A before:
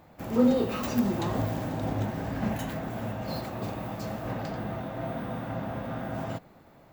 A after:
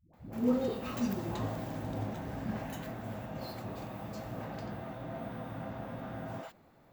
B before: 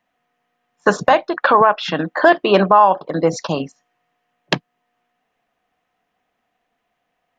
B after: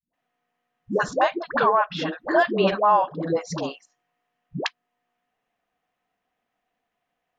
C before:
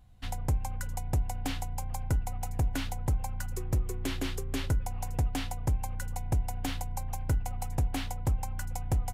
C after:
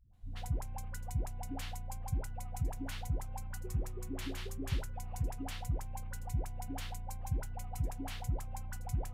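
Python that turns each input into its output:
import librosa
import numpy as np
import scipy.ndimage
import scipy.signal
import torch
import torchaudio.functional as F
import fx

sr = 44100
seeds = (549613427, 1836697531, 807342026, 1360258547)

y = fx.dispersion(x, sr, late='highs', ms=137.0, hz=360.0)
y = y * 10.0 ** (-7.0 / 20.0)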